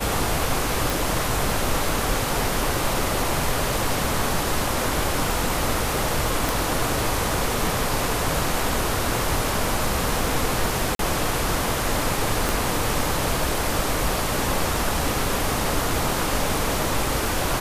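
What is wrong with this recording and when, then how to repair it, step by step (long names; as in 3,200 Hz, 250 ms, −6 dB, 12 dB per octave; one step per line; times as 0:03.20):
0:00.90: click
0:06.49: click
0:10.95–0:10.99: drop-out 42 ms
0:12.49: click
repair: click removal
repair the gap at 0:10.95, 42 ms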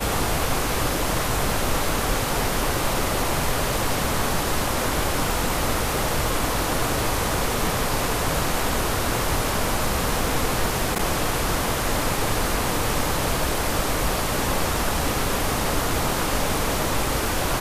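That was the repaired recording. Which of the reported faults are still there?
0:12.49: click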